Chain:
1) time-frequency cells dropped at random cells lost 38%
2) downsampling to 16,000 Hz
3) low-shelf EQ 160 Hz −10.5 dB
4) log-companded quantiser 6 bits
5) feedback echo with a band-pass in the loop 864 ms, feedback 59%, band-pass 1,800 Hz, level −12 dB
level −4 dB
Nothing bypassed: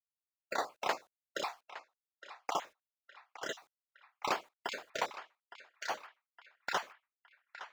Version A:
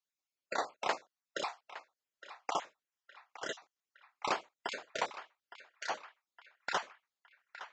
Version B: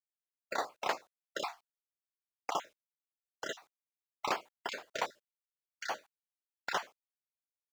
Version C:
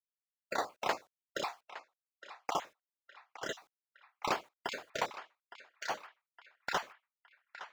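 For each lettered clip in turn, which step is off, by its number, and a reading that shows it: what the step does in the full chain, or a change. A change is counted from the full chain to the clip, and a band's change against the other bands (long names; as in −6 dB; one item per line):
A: 4, distortion level −25 dB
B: 5, change in momentary loudness spread −9 LU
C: 3, 125 Hz band +5.5 dB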